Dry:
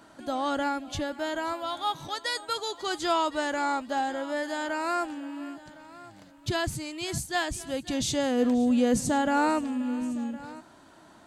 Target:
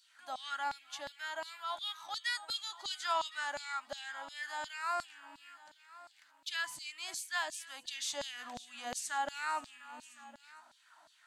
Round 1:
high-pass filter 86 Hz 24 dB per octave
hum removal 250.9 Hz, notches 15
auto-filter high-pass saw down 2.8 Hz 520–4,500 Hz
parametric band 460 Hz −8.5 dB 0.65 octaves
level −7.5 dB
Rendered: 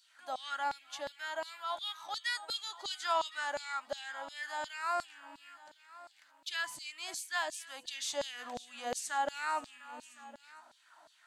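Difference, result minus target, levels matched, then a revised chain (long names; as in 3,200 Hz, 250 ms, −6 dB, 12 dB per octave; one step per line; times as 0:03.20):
500 Hz band +4.0 dB
high-pass filter 86 Hz 24 dB per octave
hum removal 250.9 Hz, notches 15
auto-filter high-pass saw down 2.8 Hz 520–4,500 Hz
parametric band 460 Hz −20 dB 0.65 octaves
level −7.5 dB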